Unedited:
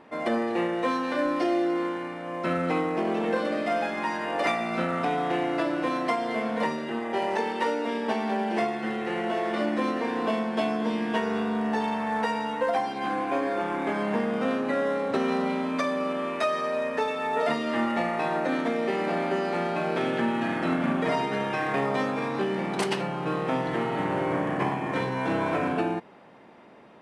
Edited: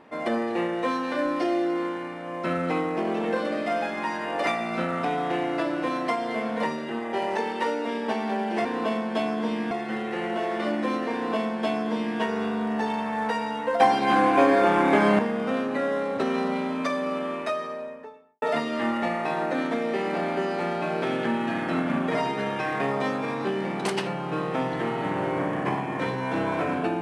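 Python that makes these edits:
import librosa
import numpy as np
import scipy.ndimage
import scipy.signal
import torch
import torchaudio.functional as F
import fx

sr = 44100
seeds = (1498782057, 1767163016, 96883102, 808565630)

y = fx.studio_fade_out(x, sr, start_s=16.11, length_s=1.25)
y = fx.edit(y, sr, fx.duplicate(start_s=10.07, length_s=1.06, to_s=8.65),
    fx.clip_gain(start_s=12.74, length_s=1.39, db=8.5), tone=tone)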